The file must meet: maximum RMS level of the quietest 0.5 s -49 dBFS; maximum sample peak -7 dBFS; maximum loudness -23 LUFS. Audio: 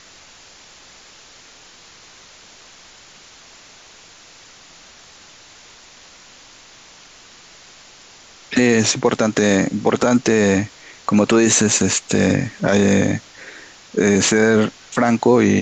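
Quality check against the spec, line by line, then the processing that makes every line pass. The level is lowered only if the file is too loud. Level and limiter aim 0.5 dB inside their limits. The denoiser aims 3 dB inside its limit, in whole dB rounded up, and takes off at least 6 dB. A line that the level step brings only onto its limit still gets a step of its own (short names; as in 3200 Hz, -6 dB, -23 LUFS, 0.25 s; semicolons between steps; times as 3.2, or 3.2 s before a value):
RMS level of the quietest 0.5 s -45 dBFS: fail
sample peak -4.5 dBFS: fail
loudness -16.5 LUFS: fail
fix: gain -7 dB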